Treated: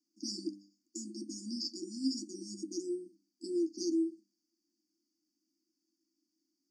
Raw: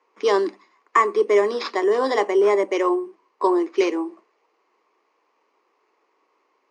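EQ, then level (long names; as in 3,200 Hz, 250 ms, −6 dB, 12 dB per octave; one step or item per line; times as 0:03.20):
linear-phase brick-wall band-stop 340–4,400 Hz
mains-hum notches 50/100/150/200/250/300 Hz
−1.5 dB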